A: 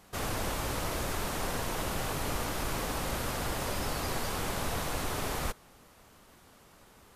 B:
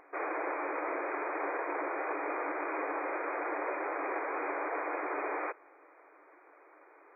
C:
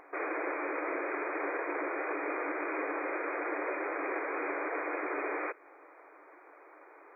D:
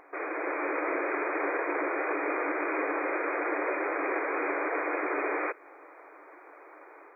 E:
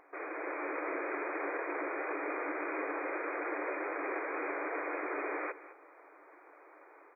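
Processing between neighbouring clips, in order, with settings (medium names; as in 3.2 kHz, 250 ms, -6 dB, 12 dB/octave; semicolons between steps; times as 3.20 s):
upward compressor, threshold -56 dBFS; FFT band-pass 280–2500 Hz; trim +2 dB
dynamic bell 850 Hz, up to -7 dB, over -49 dBFS, Q 1.2; trim +3.5 dB
level rider gain up to 4.5 dB
delay 209 ms -16 dB; trim -6.5 dB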